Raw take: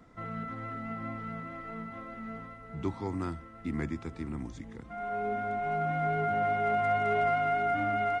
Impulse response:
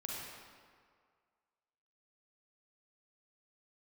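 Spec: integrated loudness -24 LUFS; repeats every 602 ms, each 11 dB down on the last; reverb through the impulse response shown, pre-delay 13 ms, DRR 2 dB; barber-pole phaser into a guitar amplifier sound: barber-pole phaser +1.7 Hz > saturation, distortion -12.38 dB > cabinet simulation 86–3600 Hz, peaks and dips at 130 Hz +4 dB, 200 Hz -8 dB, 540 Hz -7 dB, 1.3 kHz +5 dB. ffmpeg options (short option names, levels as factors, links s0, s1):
-filter_complex "[0:a]aecho=1:1:602|1204|1806:0.282|0.0789|0.0221,asplit=2[s0][s1];[1:a]atrim=start_sample=2205,adelay=13[s2];[s1][s2]afir=irnorm=-1:irlink=0,volume=0.75[s3];[s0][s3]amix=inputs=2:normalize=0,asplit=2[s4][s5];[s5]afreqshift=1.7[s6];[s4][s6]amix=inputs=2:normalize=1,asoftclip=threshold=0.0422,highpass=86,equalizer=f=130:t=q:w=4:g=4,equalizer=f=200:t=q:w=4:g=-8,equalizer=f=540:t=q:w=4:g=-7,equalizer=f=1300:t=q:w=4:g=5,lowpass=f=3600:w=0.5412,lowpass=f=3600:w=1.3066,volume=3.98"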